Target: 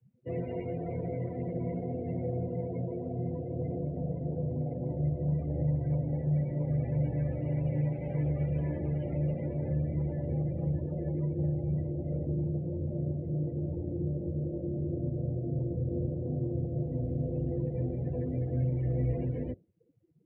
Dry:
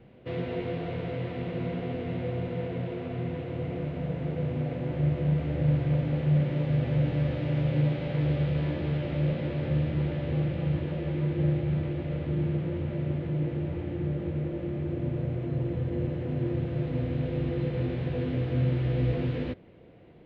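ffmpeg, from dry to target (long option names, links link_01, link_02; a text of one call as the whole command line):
ffmpeg -i in.wav -filter_complex "[0:a]afftdn=noise_reduction=33:noise_floor=-38,acrossover=split=120|760[link_01][link_02][link_03];[link_02]alimiter=level_in=2dB:limit=-24dB:level=0:latency=1:release=449,volume=-2dB[link_04];[link_01][link_04][link_03]amix=inputs=3:normalize=0,volume=-1dB" out.wav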